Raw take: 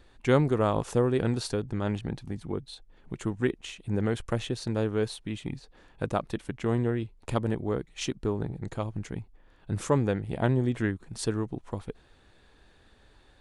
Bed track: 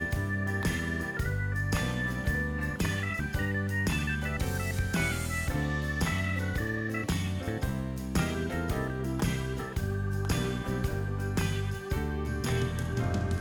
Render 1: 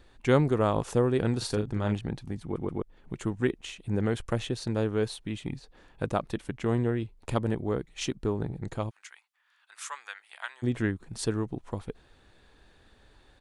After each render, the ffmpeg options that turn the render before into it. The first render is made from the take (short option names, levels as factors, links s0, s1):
-filter_complex "[0:a]asplit=3[s0][s1][s2];[s0]afade=t=out:st=1.41:d=0.02[s3];[s1]asplit=2[s4][s5];[s5]adelay=38,volume=0.473[s6];[s4][s6]amix=inputs=2:normalize=0,afade=t=in:st=1.41:d=0.02,afade=t=out:st=1.93:d=0.02[s7];[s2]afade=t=in:st=1.93:d=0.02[s8];[s3][s7][s8]amix=inputs=3:normalize=0,asplit=3[s9][s10][s11];[s9]afade=t=out:st=8.89:d=0.02[s12];[s10]highpass=f=1200:w=0.5412,highpass=f=1200:w=1.3066,afade=t=in:st=8.89:d=0.02,afade=t=out:st=10.62:d=0.02[s13];[s11]afade=t=in:st=10.62:d=0.02[s14];[s12][s13][s14]amix=inputs=3:normalize=0,asplit=4[s15][s16][s17][s18];[s15]atrim=end=2.562[s19];[s16]atrim=start=2.428:end=2.562[s20];[s17]atrim=start=2.428:end=2.562[s21];[s18]atrim=start=2.818[s22];[s19][s20]acrossfade=d=0.004:c1=hsin:c2=hsin[s23];[s23][s21]acrossfade=d=0.004:c1=hsin:c2=hsin[s24];[s24][s22]acrossfade=d=0.004:c1=hsin:c2=hsin"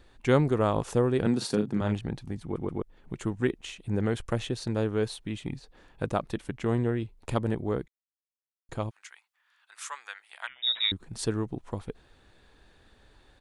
-filter_complex "[0:a]asettb=1/sr,asplit=3[s0][s1][s2];[s0]atrim=end=1.264[s3];[s1]atrim=start=1.26:end=1.81,asetpts=PTS-STARTPTS,afade=t=in:d=0.004:c=qsin,afade=t=out:st=0.546:d=0.004:c=qsin,highpass=f=190:t=q:w=2[s4];[s2]atrim=start=1.806[s5];[s3][s4]acrossfade=d=0.004:c1=hsin:c2=qsin[s6];[s6][s5]acrossfade=d=0.004:c1=qsin:c2=hsin,asettb=1/sr,asplit=3[s7][s8][s9];[s7]atrim=end=10.474[s10];[s8]atrim=start=10.47:end=10.92,asetpts=PTS-STARTPTS,afade=t=in:d=0.004:c=qsin,afade=t=out:st=0.446:d=0.004:c=qsin,lowpass=f=3300:t=q:w=0.5098,lowpass=f=3300:t=q:w=0.6013,lowpass=f=3300:t=q:w=0.9,lowpass=f=3300:t=q:w=2.563,afreqshift=-3900[s11];[s9]atrim=start=10.916[s12];[s10][s11]acrossfade=d=0.004:c1=hsin:c2=qsin[s13];[s13][s12]acrossfade=d=0.004:c1=qsin:c2=hsin,asplit=3[s14][s15][s16];[s14]atrim=end=7.88,asetpts=PTS-STARTPTS,afade=t=out:st=7.876:d=0.004:c=hsin[s17];[s15]atrim=start=7.88:end=8.69,asetpts=PTS-STARTPTS,volume=0[s18];[s16]atrim=start=8.69,asetpts=PTS-STARTPTS,afade=t=in:d=0.004:c=hsin[s19];[s17][s18][s19]concat=n=3:v=0:a=1"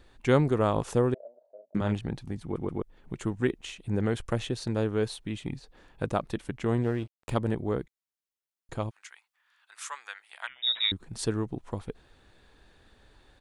-filter_complex "[0:a]asettb=1/sr,asplit=3[s0][s1][s2];[s0]atrim=end=1.144[s3];[s1]atrim=start=1.14:end=1.75,asetpts=PTS-STARTPTS,afade=t=in:d=0.004:c=qsin,afade=t=out:st=0.606:d=0.004:c=qsin,asuperpass=centerf=610:order=4:qfactor=7.8[s4];[s2]atrim=start=1.746[s5];[s3][s4]acrossfade=d=0.004:c1=hsin:c2=qsin[s6];[s6][s5]acrossfade=d=0.004:c1=qsin:c2=hsin,asettb=1/sr,asplit=3[s7][s8][s9];[s7]atrim=end=6.824[s10];[s8]atrim=start=6.82:end=7.31,asetpts=PTS-STARTPTS,afade=t=in:d=0.004:c=qsin,afade=t=out:st=0.486:d=0.004:c=qsin,aeval=exprs='sgn(val(0))*max(abs(val(0))-0.00473,0)':c=same[s11];[s9]atrim=start=7.306[s12];[s10][s11]acrossfade=d=0.004:c1=hsin:c2=qsin[s13];[s13][s12]acrossfade=d=0.004:c1=qsin:c2=hsin"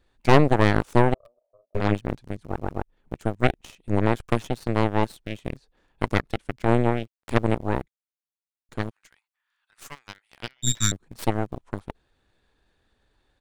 -filter_complex "[0:a]asplit=2[s0][s1];[s1]aeval=exprs='val(0)*gte(abs(val(0)),0.0158)':c=same,volume=0.376[s2];[s0][s2]amix=inputs=2:normalize=0,aeval=exprs='0.501*(cos(1*acos(clip(val(0)/0.501,-1,1)))-cos(1*PI/2))+0.112*(cos(3*acos(clip(val(0)/0.501,-1,1)))-cos(3*PI/2))+0.251*(cos(4*acos(clip(val(0)/0.501,-1,1)))-cos(4*PI/2))+0.0316*(cos(8*acos(clip(val(0)/0.501,-1,1)))-cos(8*PI/2))':c=same"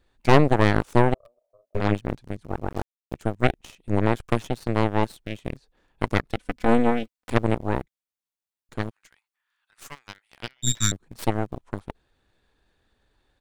-filter_complex "[0:a]asettb=1/sr,asplit=3[s0][s1][s2];[s0]atrim=end=2.704[s3];[s1]atrim=start=2.7:end=3.14,asetpts=PTS-STARTPTS,afade=t=in:d=0.004:c=qsin,afade=t=out:st=0.436:d=0.004:c=qsin,acrusher=bits=5:mix=0:aa=0.5[s4];[s2]atrim=start=3.136[s5];[s3][s4]acrossfade=d=0.004:c1=hsin:c2=qsin[s6];[s6][s5]acrossfade=d=0.004:c1=qsin:c2=hsin,asettb=1/sr,asplit=3[s7][s8][s9];[s7]atrim=end=6.364[s10];[s8]atrim=start=6.36:end=7.31,asetpts=PTS-STARTPTS,afade=t=in:d=0.004:c=qsin,afade=t=out:st=0.946:d=0.004:c=qsin,aecho=1:1:4:0.71,atrim=end_sample=41895[s11];[s9]atrim=start=7.306[s12];[s10][s11]acrossfade=d=0.004:c1=hsin:c2=qsin[s13];[s13][s12]acrossfade=d=0.004:c1=qsin:c2=hsin"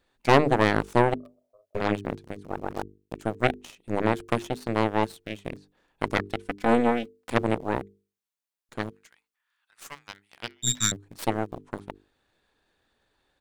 -af "lowshelf=f=110:g=-11.5,bandreject=f=50:t=h:w=6,bandreject=f=100:t=h:w=6,bandreject=f=150:t=h:w=6,bandreject=f=200:t=h:w=6,bandreject=f=250:t=h:w=6,bandreject=f=300:t=h:w=6,bandreject=f=350:t=h:w=6,bandreject=f=400:t=h:w=6,bandreject=f=450:t=h:w=6"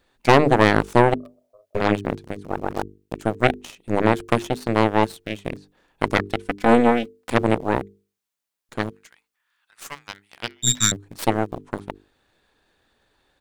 -af "volume=2,alimiter=limit=0.794:level=0:latency=1"